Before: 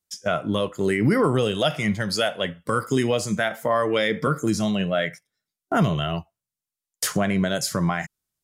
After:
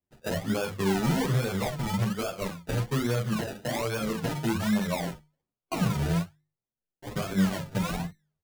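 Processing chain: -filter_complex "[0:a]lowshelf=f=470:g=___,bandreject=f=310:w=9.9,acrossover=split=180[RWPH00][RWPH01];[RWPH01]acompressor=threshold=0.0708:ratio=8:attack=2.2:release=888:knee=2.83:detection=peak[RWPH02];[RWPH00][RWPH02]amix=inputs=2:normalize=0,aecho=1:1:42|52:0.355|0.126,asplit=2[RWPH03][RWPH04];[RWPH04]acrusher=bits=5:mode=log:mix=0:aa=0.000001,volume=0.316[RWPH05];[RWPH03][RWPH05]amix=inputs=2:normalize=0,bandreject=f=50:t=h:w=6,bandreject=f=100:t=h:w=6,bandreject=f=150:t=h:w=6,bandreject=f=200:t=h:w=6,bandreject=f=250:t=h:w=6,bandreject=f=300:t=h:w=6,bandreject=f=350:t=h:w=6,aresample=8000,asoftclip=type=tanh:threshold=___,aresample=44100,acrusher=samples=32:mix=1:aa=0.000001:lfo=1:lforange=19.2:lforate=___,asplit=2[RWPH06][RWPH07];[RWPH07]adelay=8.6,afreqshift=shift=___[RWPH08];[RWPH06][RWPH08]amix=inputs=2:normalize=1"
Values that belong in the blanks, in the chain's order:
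3.5, 0.141, 1.2, 2.6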